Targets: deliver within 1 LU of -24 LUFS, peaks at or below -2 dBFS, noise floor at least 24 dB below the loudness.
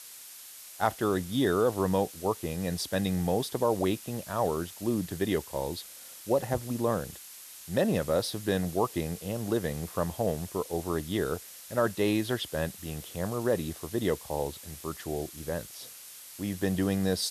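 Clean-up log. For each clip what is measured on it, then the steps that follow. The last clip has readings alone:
noise floor -47 dBFS; noise floor target -55 dBFS; loudness -30.5 LUFS; peak -10.5 dBFS; loudness target -24.0 LUFS
-> denoiser 8 dB, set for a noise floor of -47 dBFS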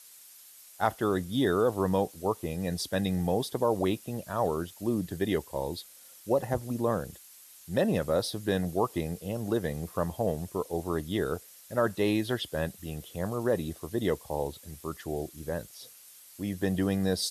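noise floor -53 dBFS; noise floor target -55 dBFS
-> denoiser 6 dB, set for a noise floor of -53 dBFS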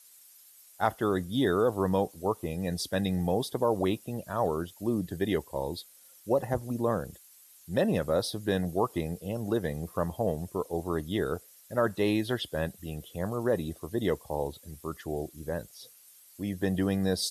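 noise floor -56 dBFS; loudness -31.0 LUFS; peak -10.5 dBFS; loudness target -24.0 LUFS
-> gain +7 dB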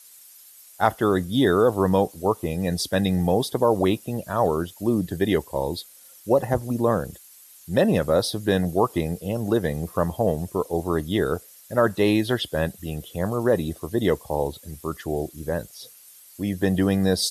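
loudness -24.0 LUFS; peak -3.5 dBFS; noise floor -49 dBFS

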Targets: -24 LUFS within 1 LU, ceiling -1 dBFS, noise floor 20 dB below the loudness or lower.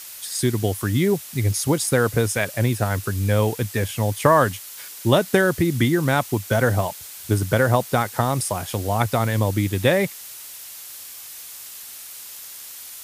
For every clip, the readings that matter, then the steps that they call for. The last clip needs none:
noise floor -39 dBFS; noise floor target -42 dBFS; loudness -21.5 LUFS; peak -2.0 dBFS; loudness target -24.0 LUFS
-> denoiser 6 dB, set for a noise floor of -39 dBFS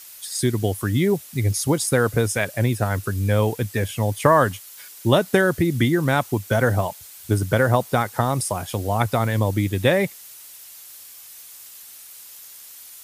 noise floor -43 dBFS; loudness -21.5 LUFS; peak -2.0 dBFS; loudness target -24.0 LUFS
-> gain -2.5 dB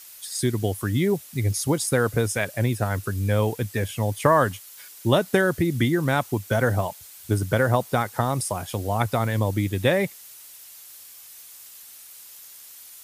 loudness -24.0 LUFS; peak -4.5 dBFS; noise floor -45 dBFS

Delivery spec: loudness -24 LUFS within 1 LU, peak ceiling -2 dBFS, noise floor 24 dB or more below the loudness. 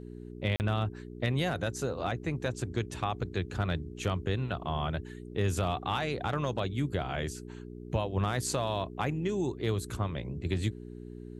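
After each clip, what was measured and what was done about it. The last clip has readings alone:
dropouts 1; longest dropout 39 ms; hum 60 Hz; harmonics up to 420 Hz; hum level -41 dBFS; loudness -33.0 LUFS; peak -15.5 dBFS; loudness target -24.0 LUFS
-> interpolate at 0.56, 39 ms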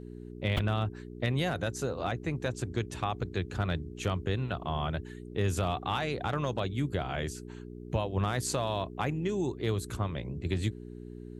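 dropouts 0; hum 60 Hz; harmonics up to 420 Hz; hum level -41 dBFS
-> de-hum 60 Hz, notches 7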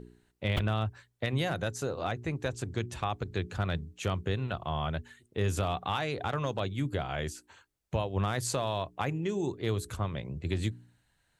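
hum none; loudness -33.5 LUFS; peak -16.0 dBFS; loudness target -24.0 LUFS
-> gain +9.5 dB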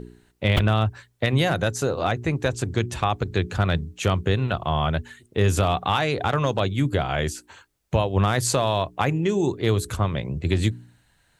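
loudness -24.0 LUFS; peak -6.5 dBFS; noise floor -64 dBFS

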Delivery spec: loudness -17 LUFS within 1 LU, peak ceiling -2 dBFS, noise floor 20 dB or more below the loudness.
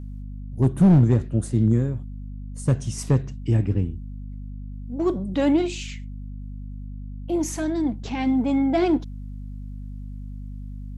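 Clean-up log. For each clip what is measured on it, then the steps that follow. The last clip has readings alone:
clipped 0.4%; flat tops at -10.5 dBFS; hum 50 Hz; harmonics up to 250 Hz; hum level -32 dBFS; loudness -22.5 LUFS; peak -10.5 dBFS; loudness target -17.0 LUFS
-> clip repair -10.5 dBFS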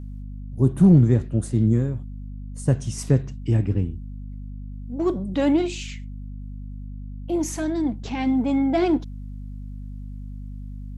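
clipped 0.0%; hum 50 Hz; harmonics up to 250 Hz; hum level -32 dBFS
-> notches 50/100/150/200/250 Hz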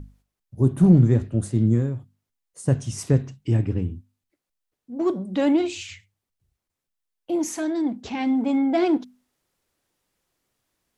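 hum none; loudness -22.5 LUFS; peak -4.5 dBFS; loudness target -17.0 LUFS
-> gain +5.5 dB; limiter -2 dBFS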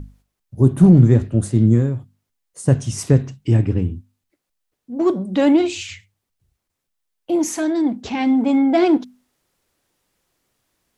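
loudness -17.5 LUFS; peak -2.0 dBFS; noise floor -79 dBFS

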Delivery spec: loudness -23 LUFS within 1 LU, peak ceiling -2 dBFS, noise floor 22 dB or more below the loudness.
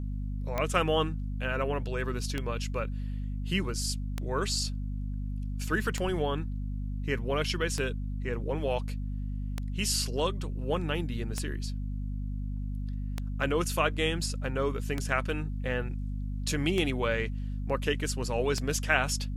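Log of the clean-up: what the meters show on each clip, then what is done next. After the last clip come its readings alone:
clicks 11; hum 50 Hz; harmonics up to 250 Hz; hum level -31 dBFS; loudness -31.5 LUFS; peak -8.5 dBFS; loudness target -23.0 LUFS
-> de-click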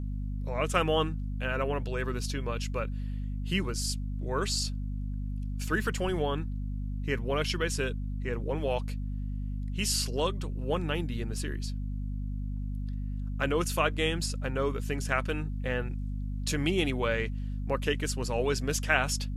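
clicks 0; hum 50 Hz; harmonics up to 250 Hz; hum level -31 dBFS
-> notches 50/100/150/200/250 Hz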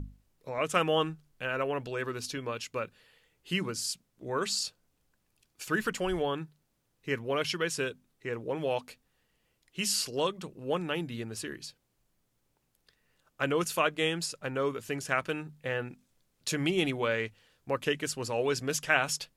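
hum none; loudness -32.0 LUFS; peak -9.5 dBFS; loudness target -23.0 LUFS
-> gain +9 dB; limiter -2 dBFS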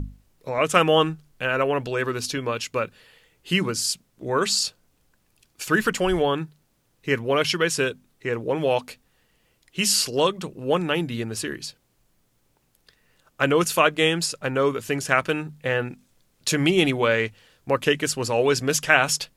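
loudness -23.0 LUFS; peak -2.0 dBFS; noise floor -67 dBFS

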